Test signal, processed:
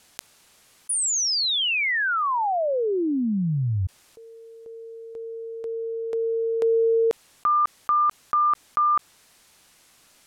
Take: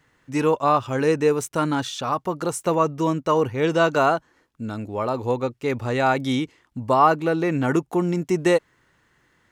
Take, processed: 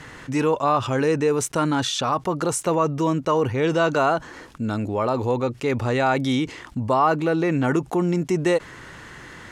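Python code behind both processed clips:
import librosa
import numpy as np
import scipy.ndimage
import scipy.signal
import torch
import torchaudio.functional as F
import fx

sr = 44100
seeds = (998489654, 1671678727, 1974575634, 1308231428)

y = scipy.signal.sosfilt(scipy.signal.butter(2, 11000.0, 'lowpass', fs=sr, output='sos'), x)
y = fx.env_flatten(y, sr, amount_pct=50)
y = y * 10.0 ** (-3.5 / 20.0)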